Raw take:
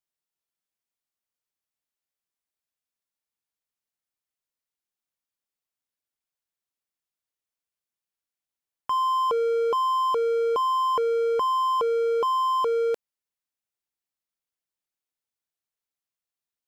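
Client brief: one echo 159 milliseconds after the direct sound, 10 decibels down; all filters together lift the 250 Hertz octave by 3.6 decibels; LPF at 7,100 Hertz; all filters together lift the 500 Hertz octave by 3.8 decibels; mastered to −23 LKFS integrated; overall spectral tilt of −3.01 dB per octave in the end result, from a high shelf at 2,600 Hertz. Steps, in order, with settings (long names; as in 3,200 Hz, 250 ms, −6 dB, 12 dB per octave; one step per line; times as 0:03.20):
low-pass filter 7,100 Hz
parametric band 250 Hz +3.5 dB
parametric band 500 Hz +3.5 dB
high-shelf EQ 2,600 Hz −9 dB
single-tap delay 159 ms −10 dB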